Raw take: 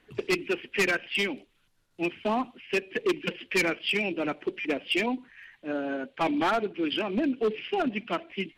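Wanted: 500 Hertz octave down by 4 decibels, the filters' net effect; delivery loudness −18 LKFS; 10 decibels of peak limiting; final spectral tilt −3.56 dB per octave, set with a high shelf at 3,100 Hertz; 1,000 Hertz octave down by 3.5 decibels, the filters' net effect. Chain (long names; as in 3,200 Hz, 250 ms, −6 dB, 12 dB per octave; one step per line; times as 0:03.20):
parametric band 500 Hz −5 dB
parametric band 1,000 Hz −4 dB
high-shelf EQ 3,100 Hz +8 dB
level +13.5 dB
brickwall limiter −7.5 dBFS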